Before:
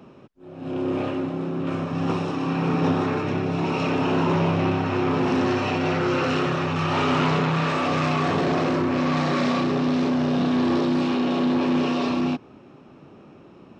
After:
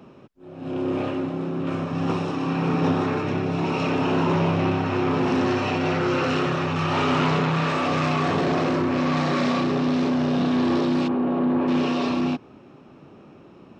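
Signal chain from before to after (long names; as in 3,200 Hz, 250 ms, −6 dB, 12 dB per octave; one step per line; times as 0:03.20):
0:11.07–0:11.67: low-pass filter 1,100 Hz → 1,700 Hz 12 dB per octave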